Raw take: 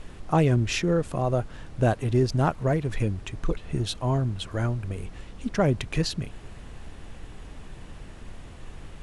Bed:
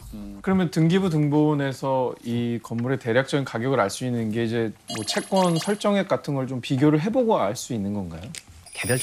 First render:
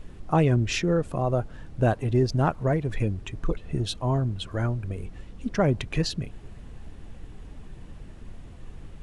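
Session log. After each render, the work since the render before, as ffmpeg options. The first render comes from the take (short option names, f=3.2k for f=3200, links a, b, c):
-af "afftdn=nr=7:nf=-44"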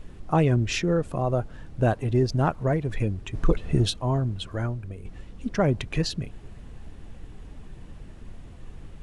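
-filter_complex "[0:a]asplit=3[a][b][c];[a]afade=t=out:st=3.33:d=0.02[d];[b]acontrast=55,afade=t=in:st=3.33:d=0.02,afade=t=out:st=3.89:d=0.02[e];[c]afade=t=in:st=3.89:d=0.02[f];[d][e][f]amix=inputs=3:normalize=0,asplit=2[g][h];[g]atrim=end=5.05,asetpts=PTS-STARTPTS,afade=t=out:st=4.42:d=0.63:silence=0.446684[i];[h]atrim=start=5.05,asetpts=PTS-STARTPTS,afade=t=in:d=0.004:c=hsin:silence=0.446684[j];[i][j]concat=n=2:v=0:a=1"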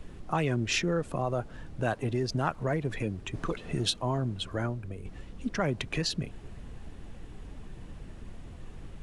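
-filter_complex "[0:a]acrossover=split=150|990[a][b][c];[a]acompressor=threshold=-38dB:ratio=6[d];[b]alimiter=limit=-23dB:level=0:latency=1:release=103[e];[d][e][c]amix=inputs=3:normalize=0"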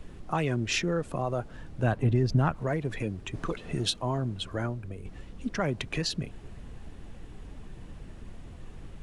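-filter_complex "[0:a]asettb=1/sr,asplit=3[a][b][c];[a]atrim=end=1.834[d];[b]atrim=start=1.83:end=2.56,asetpts=PTS-STARTPTS,afade=t=in:d=0.004:c=qsin,afade=t=out:st=0.726:d=0.004:c=qsin,bass=f=250:g=9,treble=f=4k:g=-6[e];[c]atrim=start=2.556[f];[d][e]acrossfade=d=0.004:c1=hsin:c2=qsin[g];[g][f]acrossfade=d=0.004:c1=qsin:c2=hsin"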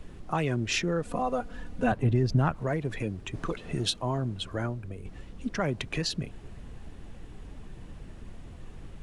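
-filter_complex "[0:a]asettb=1/sr,asplit=3[a][b][c];[a]atrim=end=1.054[d];[b]atrim=start=1.05:end=1.92,asetpts=PTS-STARTPTS,afade=t=in:d=0.004:c=qsin,afade=t=out:st=0.866:d=0.004:c=qsin,aecho=1:1:4.1:0.93,atrim=end_sample=38367[e];[c]atrim=start=1.916[f];[d][e]acrossfade=d=0.004:c1=hsin:c2=qsin[g];[g][f]acrossfade=d=0.004:c1=qsin:c2=hsin"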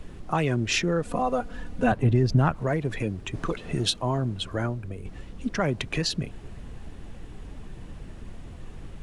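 -af "volume=3.5dB"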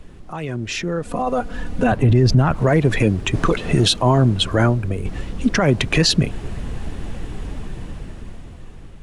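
-af "alimiter=limit=-19dB:level=0:latency=1:release=13,dynaudnorm=f=340:g=9:m=13dB"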